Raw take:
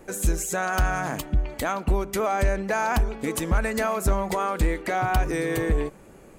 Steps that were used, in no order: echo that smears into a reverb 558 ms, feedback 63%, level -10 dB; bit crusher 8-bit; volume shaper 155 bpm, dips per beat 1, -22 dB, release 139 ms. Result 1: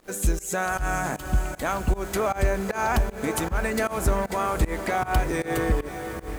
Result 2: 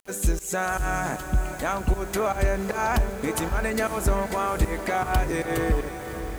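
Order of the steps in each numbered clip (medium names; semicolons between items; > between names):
echo that smears into a reverb > bit crusher > volume shaper; volume shaper > echo that smears into a reverb > bit crusher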